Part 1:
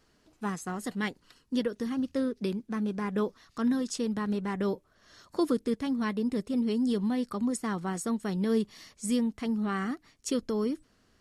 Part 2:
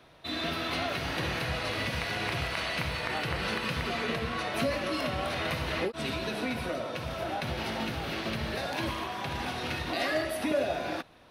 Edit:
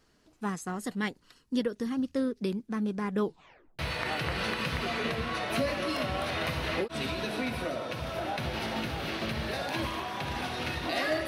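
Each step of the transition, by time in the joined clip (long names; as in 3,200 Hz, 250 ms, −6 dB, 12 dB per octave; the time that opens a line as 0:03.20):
part 1
0:03.22: tape stop 0.57 s
0:03.79: continue with part 2 from 0:02.83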